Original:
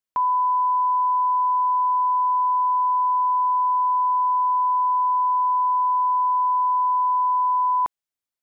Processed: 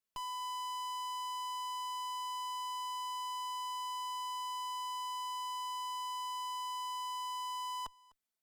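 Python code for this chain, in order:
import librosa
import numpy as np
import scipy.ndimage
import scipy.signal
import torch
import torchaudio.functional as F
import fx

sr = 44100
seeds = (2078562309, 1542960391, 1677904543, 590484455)

y = x + 0.55 * np.pad(x, (int(4.6 * sr / 1000.0), 0))[:len(x)]
y = fx.tube_stage(y, sr, drive_db=41.0, bias=0.7)
y = y + 10.0 ** (-23.0 / 20.0) * np.pad(y, (int(252 * sr / 1000.0), 0))[:len(y)]
y = F.gain(torch.from_numpy(y), 1.0).numpy()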